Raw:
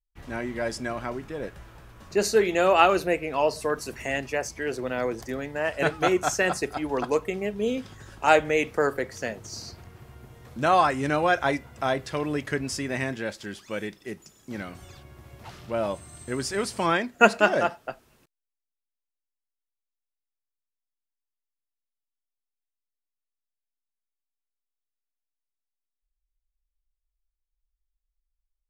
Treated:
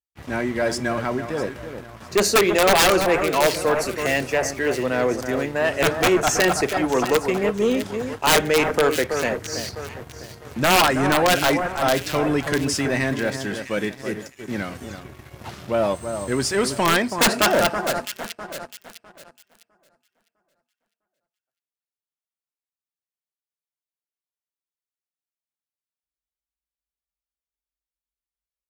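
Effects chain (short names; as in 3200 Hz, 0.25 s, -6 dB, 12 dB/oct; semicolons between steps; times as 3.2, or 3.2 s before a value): HPF 67 Hz 24 dB/oct; wrapped overs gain 13 dB; echo with dull and thin repeats by turns 0.327 s, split 1800 Hz, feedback 59%, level -9 dB; sample leveller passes 2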